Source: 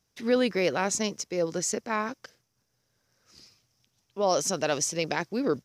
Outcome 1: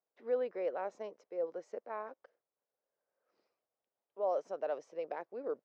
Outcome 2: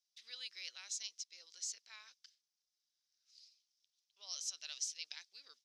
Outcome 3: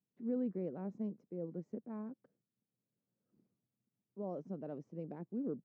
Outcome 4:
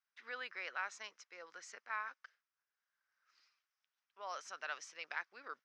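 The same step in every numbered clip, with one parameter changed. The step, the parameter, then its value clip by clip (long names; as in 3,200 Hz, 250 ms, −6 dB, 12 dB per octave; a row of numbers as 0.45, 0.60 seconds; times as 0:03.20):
four-pole ladder band-pass, frequency: 660, 4,700, 230, 1,700 Hertz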